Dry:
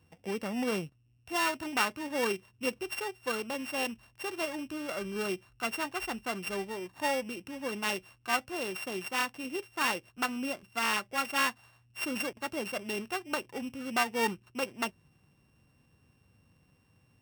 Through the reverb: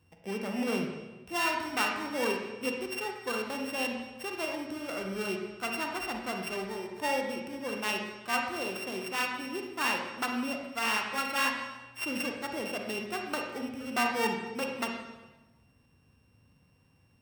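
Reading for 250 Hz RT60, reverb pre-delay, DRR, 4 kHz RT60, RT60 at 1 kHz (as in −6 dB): 1.3 s, 37 ms, 2.0 dB, 1.0 s, 1.1 s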